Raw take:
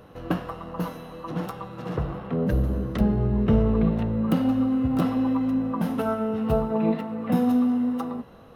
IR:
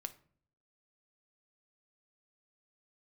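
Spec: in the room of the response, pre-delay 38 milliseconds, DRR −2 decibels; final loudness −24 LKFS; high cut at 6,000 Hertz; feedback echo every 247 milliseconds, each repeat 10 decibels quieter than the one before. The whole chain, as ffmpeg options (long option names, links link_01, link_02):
-filter_complex "[0:a]lowpass=6000,aecho=1:1:247|494|741|988:0.316|0.101|0.0324|0.0104,asplit=2[link_01][link_02];[1:a]atrim=start_sample=2205,adelay=38[link_03];[link_02][link_03]afir=irnorm=-1:irlink=0,volume=5dB[link_04];[link_01][link_04]amix=inputs=2:normalize=0,volume=-3dB"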